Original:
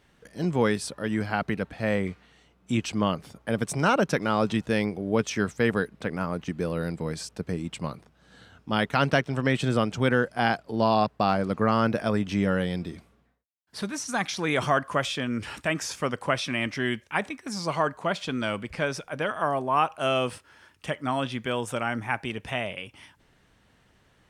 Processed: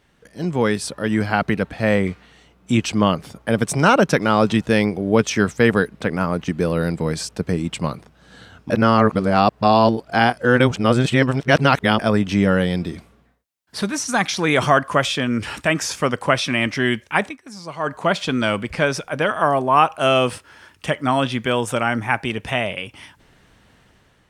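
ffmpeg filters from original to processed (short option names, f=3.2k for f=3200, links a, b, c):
-filter_complex "[0:a]asplit=5[a][b][c][d][e];[a]atrim=end=8.702[f];[b]atrim=start=8.698:end=11.992,asetpts=PTS-STARTPTS,areverse[g];[c]atrim=start=11.988:end=17.38,asetpts=PTS-STARTPTS,afade=t=out:st=5.232:d=0.16:silence=0.237137[h];[d]atrim=start=17.38:end=17.79,asetpts=PTS-STARTPTS,volume=-12.5dB[i];[e]atrim=start=17.79,asetpts=PTS-STARTPTS,afade=t=in:d=0.16:silence=0.237137[j];[f][g]acrossfade=d=0.004:c1=hsin:c2=hsin[k];[h][i][j]concat=n=3:v=0:a=1[l];[k][l]acrossfade=d=0.004:c1=hsin:c2=hsin,dynaudnorm=f=310:g=5:m=7dB,volume=2dB"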